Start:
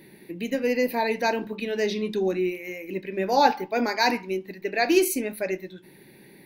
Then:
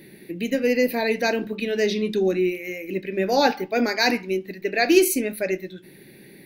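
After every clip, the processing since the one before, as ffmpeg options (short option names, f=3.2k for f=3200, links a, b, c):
-af "equalizer=f=940:t=o:w=0.49:g=-10.5,volume=4dB"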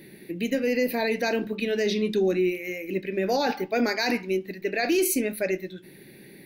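-af "alimiter=limit=-14.5dB:level=0:latency=1:release=16,volume=-1dB"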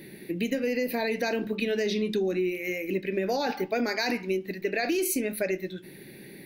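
-af "acompressor=threshold=-26dB:ratio=6,volume=2dB"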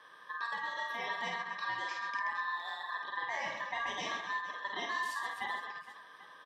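-af "aeval=exprs='val(0)*sin(2*PI*1400*n/s)':c=same,highpass=140,lowpass=5.1k,aecho=1:1:50|130|258|462.8|790.5:0.631|0.398|0.251|0.158|0.1,volume=-8.5dB"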